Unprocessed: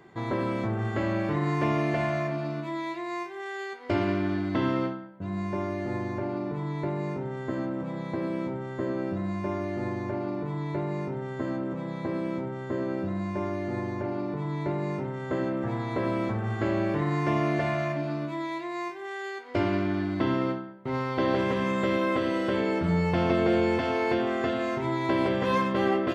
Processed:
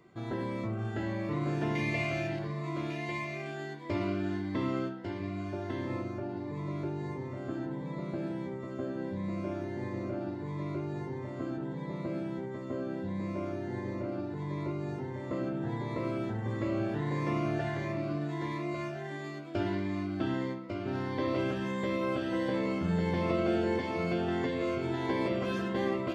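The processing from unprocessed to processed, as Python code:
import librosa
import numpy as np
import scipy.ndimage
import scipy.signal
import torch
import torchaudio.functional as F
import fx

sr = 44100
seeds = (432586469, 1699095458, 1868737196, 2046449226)

y = fx.high_shelf_res(x, sr, hz=1800.0, db=6.0, q=3.0, at=(1.75, 2.39))
y = y + 10.0 ** (-5.5 / 20.0) * np.pad(y, (int(1148 * sr / 1000.0), 0))[:len(y)]
y = fx.notch_cascade(y, sr, direction='rising', hz=1.5)
y = y * librosa.db_to_amplitude(-5.0)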